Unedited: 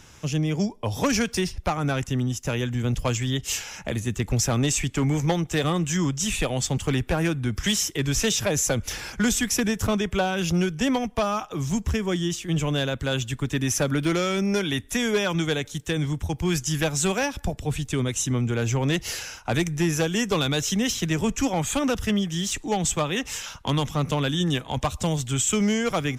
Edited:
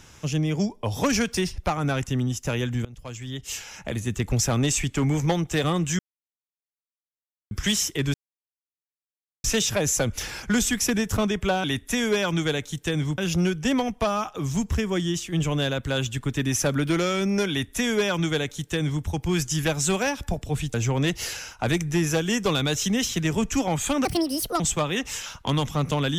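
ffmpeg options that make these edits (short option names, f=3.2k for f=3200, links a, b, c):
-filter_complex "[0:a]asplit=10[a][b][c][d][e][f][g][h][i][j];[a]atrim=end=2.85,asetpts=PTS-STARTPTS,afade=t=out:st=2.846:d=0.004:c=hsin:silence=0.0630957[k];[b]atrim=start=2.85:end=5.99,asetpts=PTS-STARTPTS,afade=t=in:d=1.31:silence=0.0630957,afade=t=out:st=3.136:d=0.004:c=hsin[l];[c]atrim=start=5.99:end=7.51,asetpts=PTS-STARTPTS,volume=0[m];[d]atrim=start=7.51:end=8.14,asetpts=PTS-STARTPTS,afade=t=in:d=0.004:c=hsin,afade=t=out:st=0.626:d=0.004:c=hsin,apad=pad_dur=1.3[n];[e]atrim=start=8.14:end=10.342,asetpts=PTS-STARTPTS,afade=t=in:d=0.004:c=hsin[o];[f]atrim=start=14.658:end=16.202[p];[g]atrim=start=10.338:end=17.902[q];[h]atrim=start=18.598:end=21.914[r];[i]atrim=start=21.91:end=22.8,asetpts=PTS-STARTPTS,asetrate=71442,aresample=44100[s];[j]atrim=start=22.796[t];[k][l][m][n][o]concat=n=5:v=0:a=1[u];[u][p]acrossfade=d=0.004:c1=hsin:c2=hsin[v];[v][q]acrossfade=d=0.004:c1=hsin:c2=hsin[w];[w][r]acrossfade=d=0.004:c1=hsin:c2=hsin[x];[x][s]acrossfade=d=0.004:c1=hsin:c2=hsin[y];[y][t]acrossfade=d=0.004:c1=hsin:c2=hsin"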